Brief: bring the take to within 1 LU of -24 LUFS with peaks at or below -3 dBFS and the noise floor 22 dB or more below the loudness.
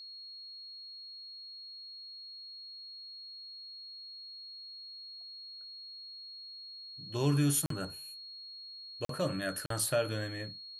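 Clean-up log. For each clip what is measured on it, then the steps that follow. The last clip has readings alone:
dropouts 3; longest dropout 43 ms; steady tone 4.3 kHz; tone level -45 dBFS; loudness -38.0 LUFS; peak level -17.5 dBFS; loudness target -24.0 LUFS
-> interpolate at 7.66/9.05/9.66 s, 43 ms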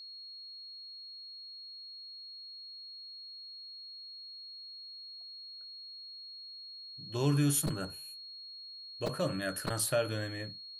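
dropouts 0; steady tone 4.3 kHz; tone level -45 dBFS
-> band-stop 4.3 kHz, Q 30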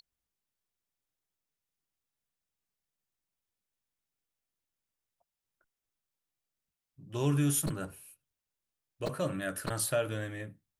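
steady tone not found; loudness -33.0 LUFS; peak level -17.5 dBFS; loudness target -24.0 LUFS
-> trim +9 dB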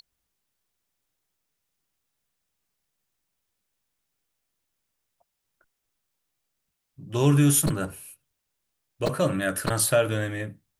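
loudness -24.0 LUFS; peak level -8.5 dBFS; noise floor -81 dBFS

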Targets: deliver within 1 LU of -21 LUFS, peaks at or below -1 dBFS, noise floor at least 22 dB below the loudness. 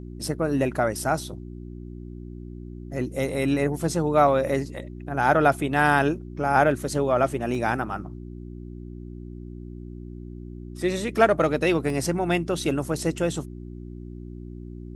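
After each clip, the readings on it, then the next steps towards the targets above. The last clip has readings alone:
dropouts 3; longest dropout 1.6 ms; hum 60 Hz; highest harmonic 360 Hz; hum level -35 dBFS; loudness -24.0 LUFS; peak level -4.5 dBFS; loudness target -21.0 LUFS
-> interpolate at 4.75/7.55/11.90 s, 1.6 ms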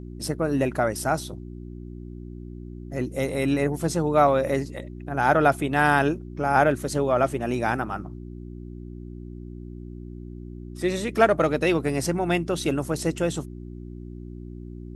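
dropouts 0; hum 60 Hz; highest harmonic 360 Hz; hum level -36 dBFS
-> de-hum 60 Hz, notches 6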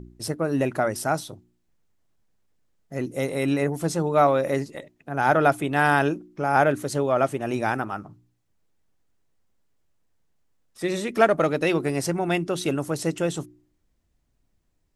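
hum not found; loudness -24.0 LUFS; peak level -4.5 dBFS; loudness target -21.0 LUFS
-> trim +3 dB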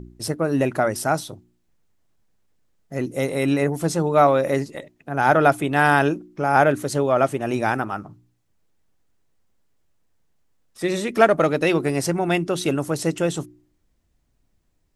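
loudness -21.0 LUFS; peak level -1.5 dBFS; noise floor -67 dBFS

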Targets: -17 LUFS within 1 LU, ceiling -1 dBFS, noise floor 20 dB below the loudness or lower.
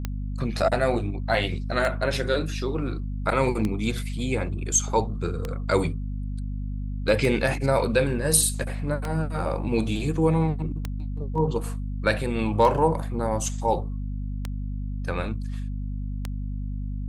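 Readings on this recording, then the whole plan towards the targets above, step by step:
clicks found 10; hum 50 Hz; highest harmonic 250 Hz; hum level -27 dBFS; loudness -26.0 LUFS; peak level -5.5 dBFS; loudness target -17.0 LUFS
-> de-click; hum notches 50/100/150/200/250 Hz; trim +9 dB; peak limiter -1 dBFS

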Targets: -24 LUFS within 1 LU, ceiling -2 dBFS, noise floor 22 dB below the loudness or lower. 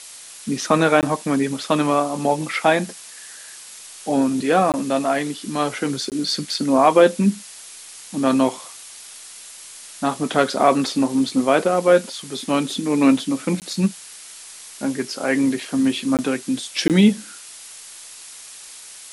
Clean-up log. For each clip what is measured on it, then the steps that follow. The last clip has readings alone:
dropouts 6; longest dropout 18 ms; noise floor -40 dBFS; noise floor target -42 dBFS; loudness -20.0 LUFS; peak level -2.5 dBFS; loudness target -24.0 LUFS
-> interpolate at 1.01/4.72/6.10/13.60/16.17/16.88 s, 18 ms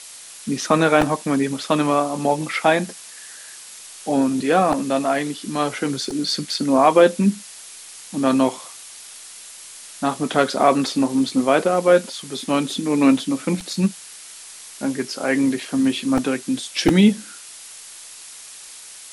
dropouts 0; noise floor -40 dBFS; noise floor target -42 dBFS
-> noise reduction 6 dB, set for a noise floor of -40 dBFS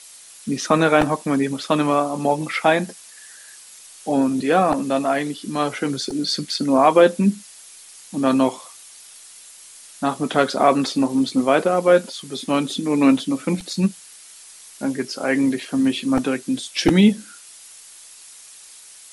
noise floor -44 dBFS; loudness -20.0 LUFS; peak level -2.5 dBFS; loudness target -24.0 LUFS
-> trim -4 dB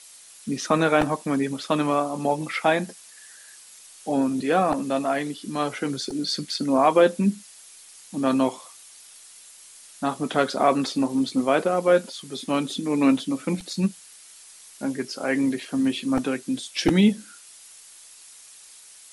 loudness -24.0 LUFS; peak level -6.5 dBFS; noise floor -48 dBFS

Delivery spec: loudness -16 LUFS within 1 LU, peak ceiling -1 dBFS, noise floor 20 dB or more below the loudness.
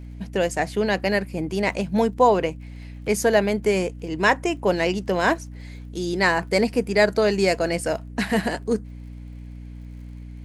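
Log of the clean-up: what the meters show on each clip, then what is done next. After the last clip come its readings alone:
tick rate 49 per s; hum 60 Hz; highest harmonic 300 Hz; hum level -35 dBFS; loudness -22.5 LUFS; peak level -4.5 dBFS; loudness target -16.0 LUFS
-> de-click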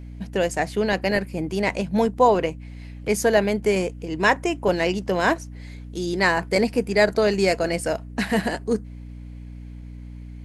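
tick rate 0 per s; hum 60 Hz; highest harmonic 300 Hz; hum level -35 dBFS
-> hum notches 60/120/180/240/300 Hz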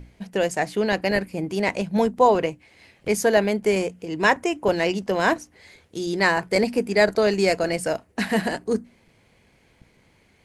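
hum not found; loudness -22.5 LUFS; peak level -4.0 dBFS; loudness target -16.0 LUFS
-> trim +6.5 dB; peak limiter -1 dBFS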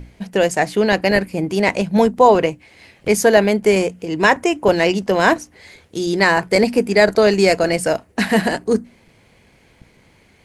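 loudness -16.5 LUFS; peak level -1.0 dBFS; noise floor -54 dBFS

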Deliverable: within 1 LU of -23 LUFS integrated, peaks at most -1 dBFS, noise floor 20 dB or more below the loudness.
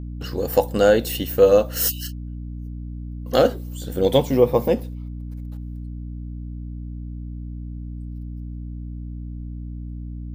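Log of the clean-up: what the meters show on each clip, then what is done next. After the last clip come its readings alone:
hum 60 Hz; highest harmonic 300 Hz; hum level -29 dBFS; loudness -20.0 LUFS; peak level -3.5 dBFS; loudness target -23.0 LUFS
-> hum notches 60/120/180/240/300 Hz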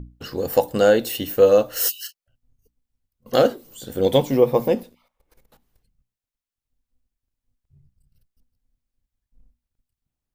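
hum not found; loudness -19.5 LUFS; peak level -3.0 dBFS; loudness target -23.0 LUFS
-> trim -3.5 dB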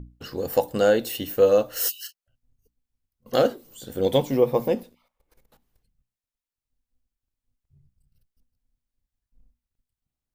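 loudness -23.0 LUFS; peak level -6.5 dBFS; noise floor -91 dBFS

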